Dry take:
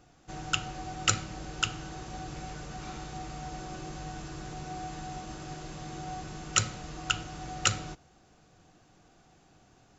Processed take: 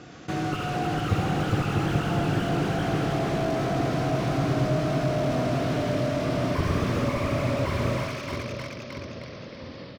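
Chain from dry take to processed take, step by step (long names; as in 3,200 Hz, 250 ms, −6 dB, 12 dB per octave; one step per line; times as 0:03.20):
pitch glide at a constant tempo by −6.5 semitones starting unshifted
high-pass filter 130 Hz 12 dB per octave
parametric band 820 Hz −8.5 dB 0.54 octaves
output level in coarse steps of 17 dB
repeating echo 69 ms, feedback 52%, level −9 dB
delay with pitch and tempo change per echo 476 ms, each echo +1 semitone, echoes 3
high-frequency loss of the air 120 metres
on a send: echo with a time of its own for lows and highs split 690 Hz, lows 648 ms, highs 311 ms, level −12 dB
on the sum: boost into a limiter +30 dB
slew-rate limiting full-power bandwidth 91 Hz
level −6.5 dB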